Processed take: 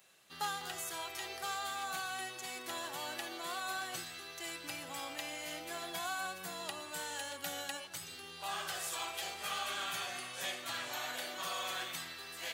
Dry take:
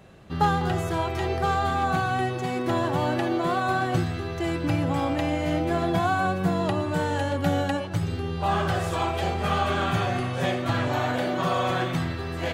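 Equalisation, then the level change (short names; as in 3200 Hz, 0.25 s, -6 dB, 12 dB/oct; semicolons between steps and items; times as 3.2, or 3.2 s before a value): differentiator; notches 50/100 Hz; +2.0 dB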